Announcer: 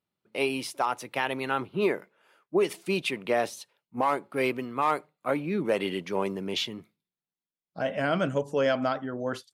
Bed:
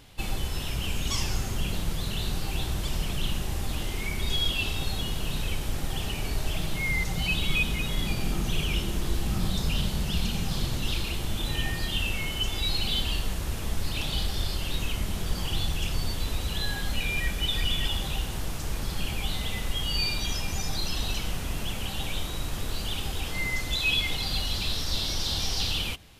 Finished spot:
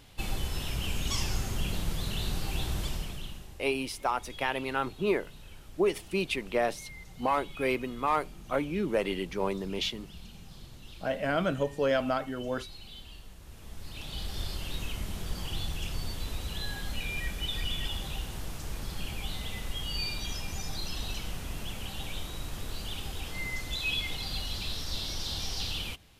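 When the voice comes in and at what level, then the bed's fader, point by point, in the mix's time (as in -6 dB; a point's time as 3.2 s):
3.25 s, -2.0 dB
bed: 2.83 s -2.5 dB
3.61 s -19.5 dB
13.37 s -19.5 dB
14.4 s -6 dB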